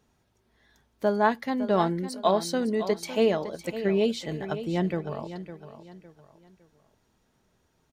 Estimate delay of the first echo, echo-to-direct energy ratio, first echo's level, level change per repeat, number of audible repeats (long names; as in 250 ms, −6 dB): 558 ms, −11.5 dB, −12.0 dB, −9.5 dB, 3